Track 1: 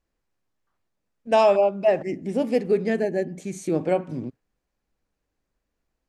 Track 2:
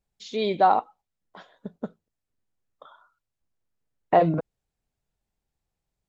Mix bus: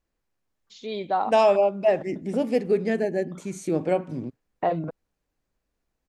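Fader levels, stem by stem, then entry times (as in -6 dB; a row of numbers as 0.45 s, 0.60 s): -1.0 dB, -6.0 dB; 0.00 s, 0.50 s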